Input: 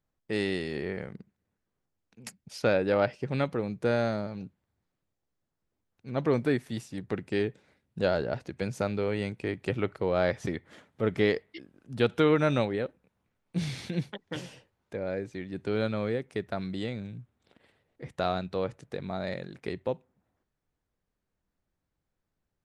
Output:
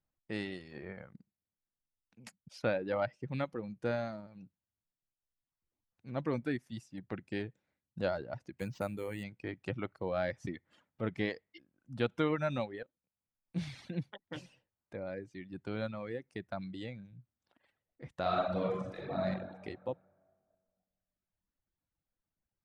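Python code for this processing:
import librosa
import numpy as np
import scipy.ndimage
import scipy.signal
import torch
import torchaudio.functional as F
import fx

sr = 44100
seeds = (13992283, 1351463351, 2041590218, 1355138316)

y = fx.resample_bad(x, sr, factor=4, down='none', up='hold', at=(8.56, 9.24))
y = fx.reverb_throw(y, sr, start_s=18.21, length_s=1.04, rt60_s=2.0, drr_db=-6.0)
y = fx.edit(y, sr, fx.fade_in_from(start_s=12.83, length_s=0.73, floor_db=-16.0), tone=tone)
y = fx.lowpass(y, sr, hz=4000.0, slope=6)
y = fx.dereverb_blind(y, sr, rt60_s=1.3)
y = fx.peak_eq(y, sr, hz=420.0, db=-8.0, octaves=0.22)
y = F.gain(torch.from_numpy(y), -5.5).numpy()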